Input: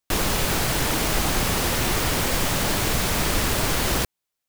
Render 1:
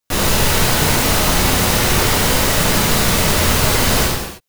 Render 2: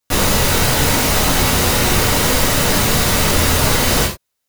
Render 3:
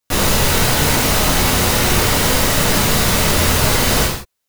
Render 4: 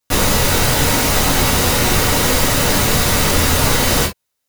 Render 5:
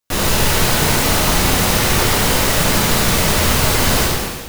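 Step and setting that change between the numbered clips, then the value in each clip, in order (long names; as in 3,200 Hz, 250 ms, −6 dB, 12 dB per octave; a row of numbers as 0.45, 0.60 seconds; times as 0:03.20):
reverb whose tail is shaped and stops, gate: 360, 130, 210, 90, 530 milliseconds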